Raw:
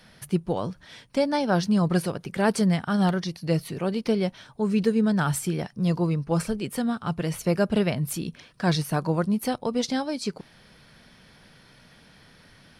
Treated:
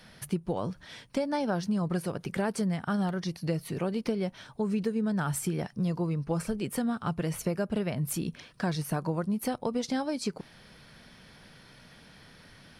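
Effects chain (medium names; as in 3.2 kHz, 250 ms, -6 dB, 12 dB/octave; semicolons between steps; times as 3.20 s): dynamic bell 3.9 kHz, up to -4 dB, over -46 dBFS, Q 1.1; compression, threshold -26 dBFS, peak gain reduction 9.5 dB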